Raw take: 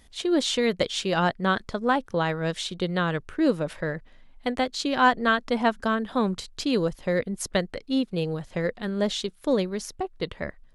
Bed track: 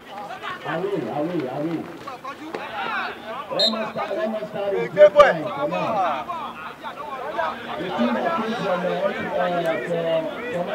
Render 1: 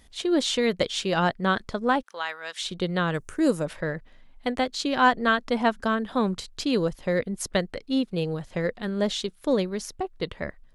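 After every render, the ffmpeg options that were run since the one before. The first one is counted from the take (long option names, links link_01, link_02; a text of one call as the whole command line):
ffmpeg -i in.wav -filter_complex "[0:a]asplit=3[link_01][link_02][link_03];[link_01]afade=type=out:start_time=2.01:duration=0.02[link_04];[link_02]highpass=1100,afade=type=in:start_time=2.01:duration=0.02,afade=type=out:start_time=2.62:duration=0.02[link_05];[link_03]afade=type=in:start_time=2.62:duration=0.02[link_06];[link_04][link_05][link_06]amix=inputs=3:normalize=0,asettb=1/sr,asplit=3[link_07][link_08][link_09];[link_07]atrim=end=3.144[link_10];[link_08]atrim=start=3.14:end=3.66,asetpts=PTS-STARTPTS,afade=type=in:duration=0.004:curve=qsin,afade=type=out:start_time=0.516:duration=0.004:curve=qsin,highshelf=frequency=5200:width_type=q:width=1.5:gain=11.5[link_11];[link_09]atrim=start=3.656[link_12];[link_10][link_11]acrossfade=duration=0.004:curve1=hsin:curve2=qsin[link_13];[link_13][link_12]acrossfade=duration=0.004:curve1=qsin:curve2=hsin" out.wav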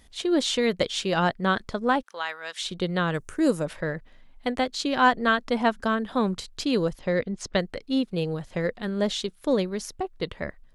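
ffmpeg -i in.wav -filter_complex "[0:a]asettb=1/sr,asplit=3[link_01][link_02][link_03];[link_01]atrim=end=6.994[link_04];[link_02]atrim=start=6.99:end=7.58,asetpts=PTS-STARTPTS,afade=type=in:duration=0.004:curve=qsin,afade=type=out:start_time=0.586:duration=0.004:curve=qsin,lowpass=frequency=6600:width=0.5412,lowpass=frequency=6600:width=1.3066[link_05];[link_03]atrim=start=7.576[link_06];[link_04][link_05]acrossfade=duration=0.004:curve1=hsin:curve2=qsin[link_07];[link_07][link_06]acrossfade=duration=0.004:curve1=qsin:curve2=hsin" out.wav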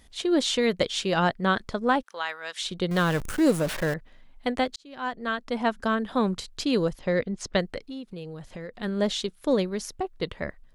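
ffmpeg -i in.wav -filter_complex "[0:a]asettb=1/sr,asplit=3[link_01][link_02][link_03];[link_01]atrim=end=2.914[link_04];[link_02]atrim=start=2.91:end=3.94,asetpts=PTS-STARTPTS,afade=type=in:duration=0.004:curve=qsin,afade=type=out:start_time=1.026:duration=0.004:curve=qsin,aeval=exprs='val(0)+0.5*0.0355*sgn(val(0))':channel_layout=same[link_05];[link_03]atrim=start=3.936[link_06];[link_04][link_05]acrossfade=duration=0.004:curve1=hsin:curve2=qsin[link_07];[link_07][link_06]acrossfade=duration=0.004:curve1=qsin:curve2=hsin,asettb=1/sr,asplit=3[link_08][link_09][link_10];[link_08]atrim=end=7.884[link_11];[link_09]atrim=start=7.88:end=8.74,asetpts=PTS-STARTPTS,afade=type=in:duration=0.004:curve=qsin,afade=type=out:start_time=0.856:duration=0.004:curve=qsin,acompressor=threshold=-36dB:ratio=4:attack=3.2:release=140:knee=1:detection=peak[link_12];[link_10]atrim=start=8.736[link_13];[link_11][link_12]acrossfade=duration=0.004:curve1=hsin:curve2=qsin[link_14];[link_14][link_13]acrossfade=duration=0.004:curve1=qsin:curve2=hsin,asplit=2[link_15][link_16];[link_15]atrim=end=4.76,asetpts=PTS-STARTPTS,afade=type=out:start_time=4.756:duration=0.004:curve=hsin[link_17];[link_16]atrim=start=4.76,asetpts=PTS-STARTPTS,afade=type=in:duration=1.21[link_18];[link_17][link_18]concat=n=2:v=0:a=1" out.wav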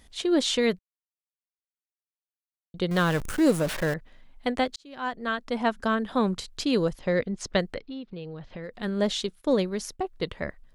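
ffmpeg -i in.wav -filter_complex "[0:a]asettb=1/sr,asplit=3[link_01][link_02][link_03];[link_01]atrim=end=7.744[link_04];[link_02]atrim=start=7.74:end=8.64,asetpts=PTS-STARTPTS,afade=type=in:duration=0.004:curve=qsin,afade=type=out:start_time=0.896:duration=0.004:curve=qsin,lowpass=frequency=4400:width=0.5412,lowpass=frequency=4400:width=1.3066[link_05];[link_03]atrim=start=8.636[link_06];[link_04][link_05]acrossfade=duration=0.004:curve1=hsin:curve2=qsin[link_07];[link_07][link_06]acrossfade=duration=0.004:curve1=qsin:curve2=hsin,asplit=3[link_08][link_09][link_10];[link_08]afade=type=out:start_time=9.4:duration=0.02[link_11];[link_09]agate=range=-33dB:threshold=-44dB:ratio=3:release=100:detection=peak,afade=type=in:start_time=9.4:duration=0.02,afade=type=out:start_time=10.11:duration=0.02[link_12];[link_10]afade=type=in:start_time=10.11:duration=0.02[link_13];[link_11][link_12][link_13]amix=inputs=3:normalize=0,asplit=3[link_14][link_15][link_16];[link_14]atrim=end=0.79,asetpts=PTS-STARTPTS,afade=type=out:start_time=0.786:duration=0.004:curve=hsin[link_17];[link_15]atrim=start=0.79:end=2.74,asetpts=PTS-STARTPTS,volume=0[link_18];[link_16]atrim=start=2.74,asetpts=PTS-STARTPTS,afade=type=in:duration=0.004:curve=hsin[link_19];[link_17][link_18][link_19]concat=n=3:v=0:a=1" out.wav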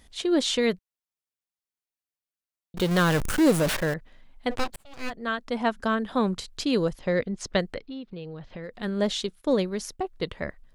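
ffmpeg -i in.wav -filter_complex "[0:a]asettb=1/sr,asplit=3[link_01][link_02][link_03];[link_01]atrim=end=2.774[link_04];[link_02]atrim=start=2.77:end=3.77,asetpts=PTS-STARTPTS,afade=type=in:duration=0.004:curve=qsin,afade=type=out:start_time=0.996:duration=0.004:curve=qsin,aeval=exprs='val(0)+0.5*0.0422*sgn(val(0))':channel_layout=same[link_05];[link_03]atrim=start=3.766[link_06];[link_04][link_05]acrossfade=duration=0.004:curve1=hsin:curve2=qsin[link_07];[link_07][link_06]acrossfade=duration=0.004:curve1=qsin:curve2=hsin,asplit=3[link_08][link_09][link_10];[link_08]afade=type=out:start_time=4.5:duration=0.02[link_11];[link_09]aeval=exprs='abs(val(0))':channel_layout=same,afade=type=in:start_time=4.5:duration=0.02,afade=type=out:start_time=5.09:duration=0.02[link_12];[link_10]afade=type=in:start_time=5.09:duration=0.02[link_13];[link_11][link_12][link_13]amix=inputs=3:normalize=0" out.wav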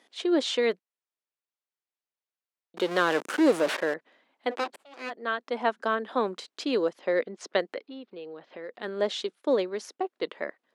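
ffmpeg -i in.wav -af "highpass=frequency=300:width=0.5412,highpass=frequency=300:width=1.3066,aemphasis=mode=reproduction:type=50fm" out.wav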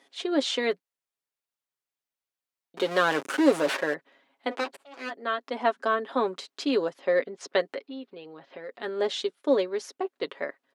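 ffmpeg -i in.wav -af "aecho=1:1:7.3:0.54" out.wav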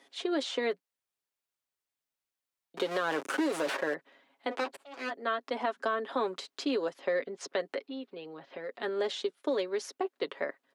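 ffmpeg -i in.wav -filter_complex "[0:a]alimiter=limit=-17dB:level=0:latency=1,acrossover=split=220|1500[link_01][link_02][link_03];[link_01]acompressor=threshold=-54dB:ratio=4[link_04];[link_02]acompressor=threshold=-28dB:ratio=4[link_05];[link_03]acompressor=threshold=-38dB:ratio=4[link_06];[link_04][link_05][link_06]amix=inputs=3:normalize=0" out.wav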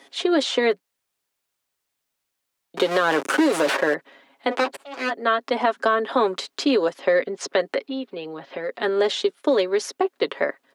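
ffmpeg -i in.wav -af "volume=11dB" out.wav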